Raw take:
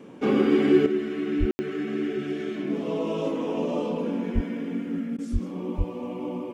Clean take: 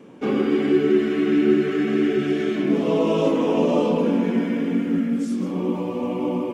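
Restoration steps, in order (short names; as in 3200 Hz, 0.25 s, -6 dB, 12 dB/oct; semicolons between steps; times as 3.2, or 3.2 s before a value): de-plosive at 1.39/4.34/5.32/5.77; room tone fill 1.51–1.59; interpolate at 5.17, 13 ms; gain correction +8 dB, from 0.86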